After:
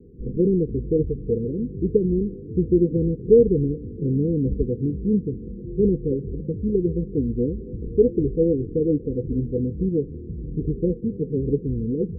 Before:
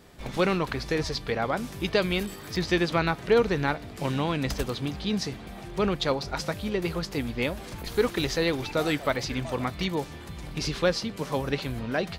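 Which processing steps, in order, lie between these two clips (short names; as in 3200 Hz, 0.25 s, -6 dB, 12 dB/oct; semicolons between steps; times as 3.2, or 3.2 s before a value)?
Chebyshev low-pass 500 Hz, order 10; gain +8 dB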